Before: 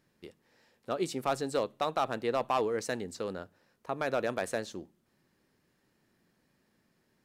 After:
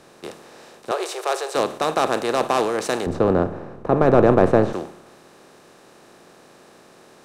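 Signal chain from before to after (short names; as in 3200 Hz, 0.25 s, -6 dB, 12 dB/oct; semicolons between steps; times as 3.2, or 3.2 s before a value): per-bin compression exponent 0.4; 0.91–1.55 elliptic high-pass 380 Hz, stop band 40 dB; 3.06–4.73 tilt -4 dB/oct; three-band expander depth 70%; gain +5 dB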